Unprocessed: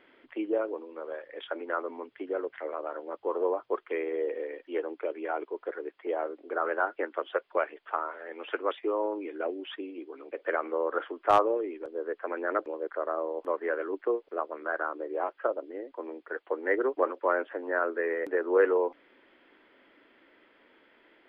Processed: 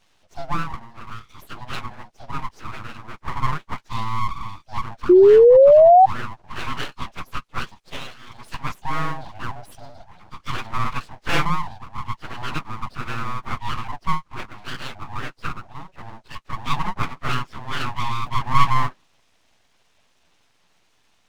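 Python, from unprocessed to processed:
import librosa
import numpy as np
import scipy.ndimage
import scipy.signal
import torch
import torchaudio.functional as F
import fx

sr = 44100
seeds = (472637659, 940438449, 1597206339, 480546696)

y = fx.partial_stretch(x, sr, pct=123)
y = fx.dynamic_eq(y, sr, hz=550.0, q=2.1, threshold_db=-44.0, ratio=4.0, max_db=8)
y = np.abs(y)
y = fx.spec_paint(y, sr, seeds[0], shape='rise', start_s=5.09, length_s=0.97, low_hz=350.0, high_hz=780.0, level_db=-14.0)
y = F.gain(torch.from_numpy(y), 4.5).numpy()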